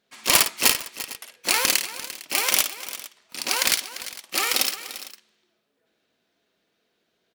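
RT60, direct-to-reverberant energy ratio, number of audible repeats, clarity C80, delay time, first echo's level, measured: no reverb, no reverb, 3, no reverb, 54 ms, -8.5 dB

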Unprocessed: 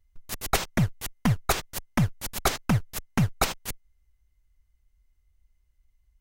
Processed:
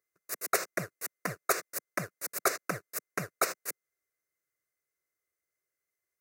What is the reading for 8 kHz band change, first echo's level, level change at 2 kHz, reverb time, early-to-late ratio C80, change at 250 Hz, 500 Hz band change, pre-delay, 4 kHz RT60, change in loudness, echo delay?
-2.0 dB, no echo, -2.0 dB, no reverb, no reverb, -15.0 dB, -1.5 dB, no reverb, no reverb, -6.0 dB, no echo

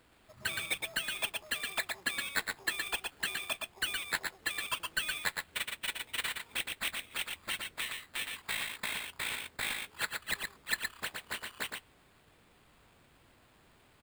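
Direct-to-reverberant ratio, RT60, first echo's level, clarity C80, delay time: no reverb, no reverb, -4.5 dB, no reverb, 117 ms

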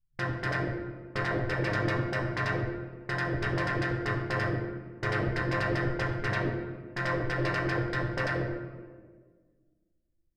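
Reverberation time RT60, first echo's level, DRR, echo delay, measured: 1.6 s, no echo, 2.0 dB, no echo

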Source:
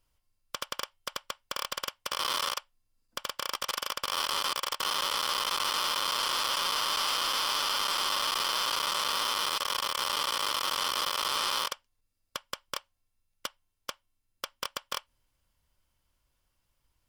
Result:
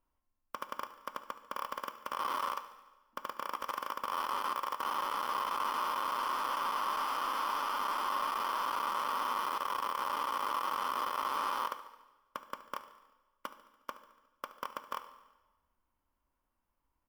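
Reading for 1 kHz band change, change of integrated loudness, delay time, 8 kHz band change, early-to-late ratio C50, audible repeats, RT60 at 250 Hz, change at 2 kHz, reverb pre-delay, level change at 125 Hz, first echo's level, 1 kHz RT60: 0.0 dB, -6.0 dB, 72 ms, -16.0 dB, 11.0 dB, 5, 1.1 s, -6.5 dB, 5 ms, no reading, -16.5 dB, 1.2 s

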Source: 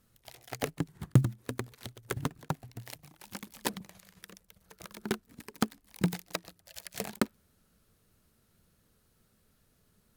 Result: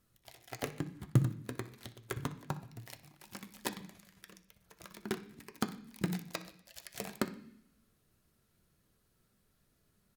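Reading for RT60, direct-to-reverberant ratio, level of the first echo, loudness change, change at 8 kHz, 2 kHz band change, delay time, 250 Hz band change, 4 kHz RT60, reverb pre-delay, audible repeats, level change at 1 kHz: 0.65 s, 5.5 dB, -17.0 dB, -4.0 dB, -5.0 dB, -4.0 dB, 62 ms, -4.5 dB, 0.80 s, 3 ms, 1, -4.0 dB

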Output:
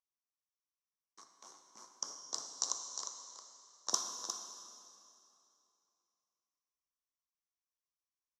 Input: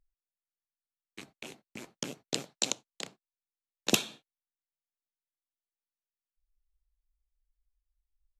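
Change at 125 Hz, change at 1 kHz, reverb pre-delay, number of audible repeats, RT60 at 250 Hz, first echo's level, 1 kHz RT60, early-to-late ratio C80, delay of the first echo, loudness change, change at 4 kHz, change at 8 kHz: under -25 dB, -1.0 dB, 4 ms, 1, 2.8 s, -8.0 dB, 2.8 s, 3.5 dB, 356 ms, -6.0 dB, -7.5 dB, -0.5 dB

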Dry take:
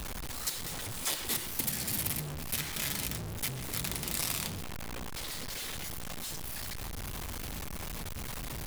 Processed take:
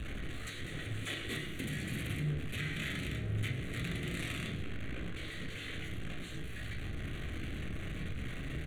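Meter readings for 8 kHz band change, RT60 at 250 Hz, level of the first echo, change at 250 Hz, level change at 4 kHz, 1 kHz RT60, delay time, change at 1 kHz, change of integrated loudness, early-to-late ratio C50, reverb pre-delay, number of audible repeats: -17.0 dB, 0.55 s, -15.5 dB, +2.5 dB, -6.0 dB, 0.35 s, 104 ms, -8.5 dB, -4.5 dB, 8.0 dB, 14 ms, 1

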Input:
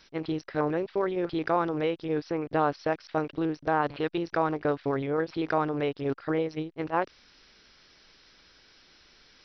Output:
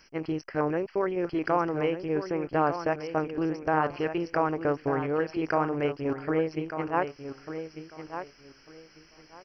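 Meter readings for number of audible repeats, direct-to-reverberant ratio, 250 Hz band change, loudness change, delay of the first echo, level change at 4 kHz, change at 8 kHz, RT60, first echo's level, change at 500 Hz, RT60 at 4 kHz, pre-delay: 2, no reverb, +0.5 dB, 0.0 dB, 1196 ms, -3.0 dB, no reading, no reverb, -9.5 dB, +0.5 dB, no reverb, no reverb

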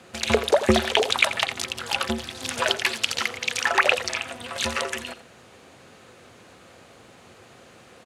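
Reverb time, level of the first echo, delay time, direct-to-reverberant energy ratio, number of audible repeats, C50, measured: no reverb, -13.0 dB, 86 ms, no reverb, 1, no reverb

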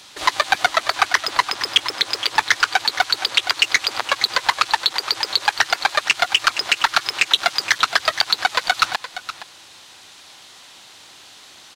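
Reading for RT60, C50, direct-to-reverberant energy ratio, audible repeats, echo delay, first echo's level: no reverb, no reverb, no reverb, 1, 469 ms, -13.0 dB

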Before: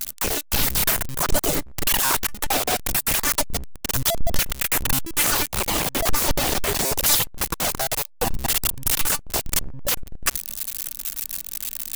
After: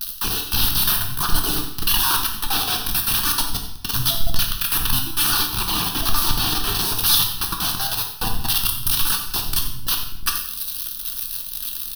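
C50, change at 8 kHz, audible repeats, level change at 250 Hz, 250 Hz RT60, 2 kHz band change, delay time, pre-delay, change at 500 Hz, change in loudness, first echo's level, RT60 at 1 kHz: 6.0 dB, -1.5 dB, 1, -0.5 dB, 0.75 s, -1.0 dB, 89 ms, 4 ms, -9.0 dB, +2.0 dB, -13.0 dB, 0.70 s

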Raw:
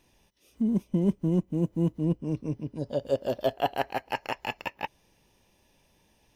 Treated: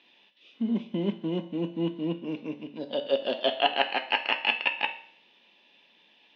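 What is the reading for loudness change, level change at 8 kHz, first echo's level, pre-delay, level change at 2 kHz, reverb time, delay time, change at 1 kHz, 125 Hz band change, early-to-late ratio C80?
+1.0 dB, no reading, no echo, 5 ms, +9.5 dB, 0.55 s, no echo, +2.0 dB, -8.5 dB, 16.0 dB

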